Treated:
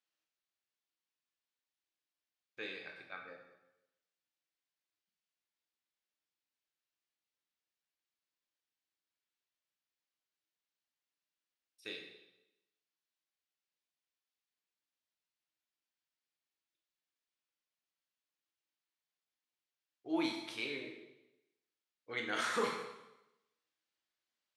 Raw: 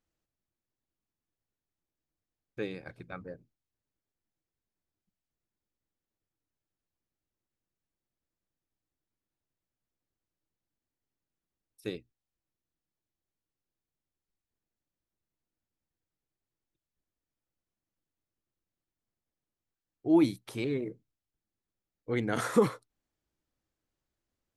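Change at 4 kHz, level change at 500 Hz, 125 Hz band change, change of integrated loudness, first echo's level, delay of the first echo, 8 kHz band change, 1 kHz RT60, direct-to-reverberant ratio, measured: +3.0 dB, -10.5 dB, -21.0 dB, -9.0 dB, none, none, -4.0 dB, 0.95 s, 0.0 dB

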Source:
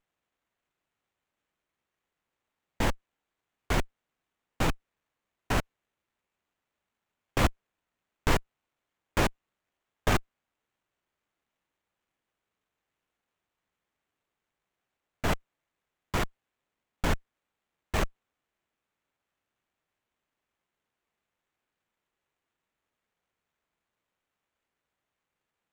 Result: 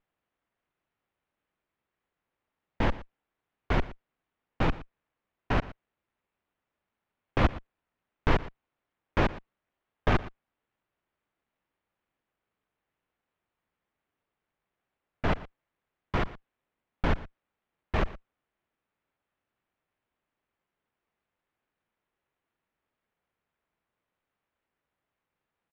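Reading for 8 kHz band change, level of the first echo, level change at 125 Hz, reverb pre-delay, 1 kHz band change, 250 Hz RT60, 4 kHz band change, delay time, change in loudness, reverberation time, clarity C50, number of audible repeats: -17.5 dB, -18.0 dB, +1.5 dB, none, +0.5 dB, none, -4.5 dB, 0.117 s, +0.5 dB, none, none, 1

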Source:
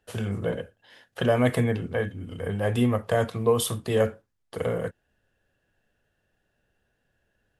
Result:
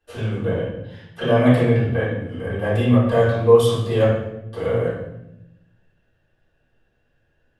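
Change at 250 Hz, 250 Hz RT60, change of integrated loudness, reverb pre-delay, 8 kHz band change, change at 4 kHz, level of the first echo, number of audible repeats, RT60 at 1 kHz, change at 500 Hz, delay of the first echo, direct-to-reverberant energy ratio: +7.0 dB, 1.3 s, +7.0 dB, 3 ms, -5.0 dB, +3.5 dB, none, none, 0.75 s, +7.5 dB, none, -11.5 dB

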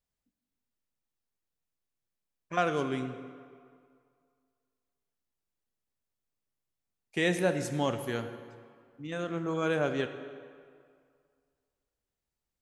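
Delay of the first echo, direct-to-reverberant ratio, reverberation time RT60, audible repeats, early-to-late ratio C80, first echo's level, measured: none, 8.5 dB, 2.2 s, none, 10.5 dB, none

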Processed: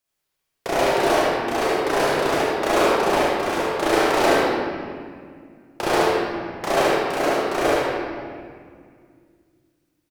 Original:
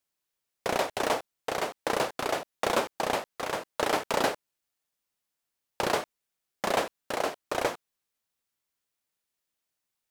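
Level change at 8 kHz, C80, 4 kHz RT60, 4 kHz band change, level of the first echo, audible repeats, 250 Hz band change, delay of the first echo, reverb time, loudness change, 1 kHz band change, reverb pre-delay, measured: +6.0 dB, -2.0 dB, 1.4 s, +7.5 dB, -1.5 dB, 1, +13.5 dB, 75 ms, 2.0 s, +9.5 dB, +9.5 dB, 26 ms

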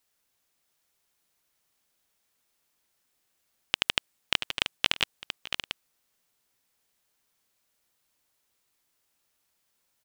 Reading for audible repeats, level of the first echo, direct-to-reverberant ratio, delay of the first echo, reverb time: 2, -18.0 dB, none, 0.611 s, none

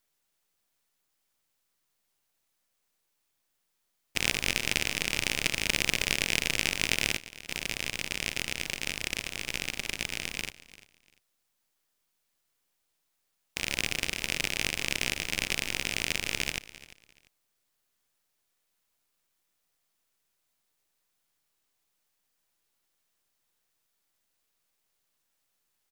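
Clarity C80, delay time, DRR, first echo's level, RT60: none, 0.345 s, none, -18.0 dB, none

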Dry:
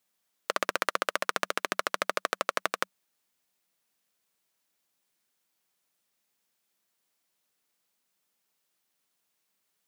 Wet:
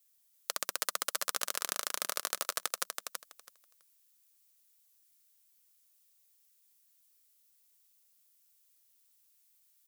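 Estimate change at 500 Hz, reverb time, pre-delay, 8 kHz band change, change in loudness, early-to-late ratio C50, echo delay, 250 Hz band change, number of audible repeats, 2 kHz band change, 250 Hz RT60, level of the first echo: -11.5 dB, none, none, +6.0 dB, -3.5 dB, none, 0.328 s, -12.5 dB, 2, -9.0 dB, none, -4.5 dB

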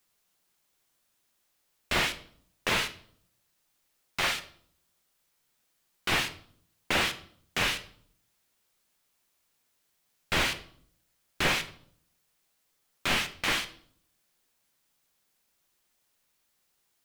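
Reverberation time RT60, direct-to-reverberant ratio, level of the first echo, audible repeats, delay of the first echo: 0.60 s, 8.0 dB, none, none, none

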